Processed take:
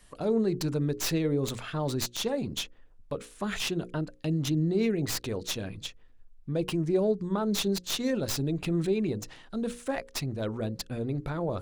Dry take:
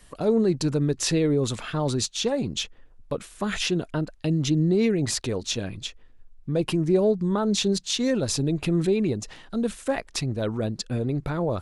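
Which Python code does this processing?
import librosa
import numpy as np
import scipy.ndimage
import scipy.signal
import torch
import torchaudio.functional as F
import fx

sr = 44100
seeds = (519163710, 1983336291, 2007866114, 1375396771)

y = fx.tracing_dist(x, sr, depth_ms=0.086)
y = fx.hum_notches(y, sr, base_hz=60, count=9)
y = y * librosa.db_to_amplitude(-4.5)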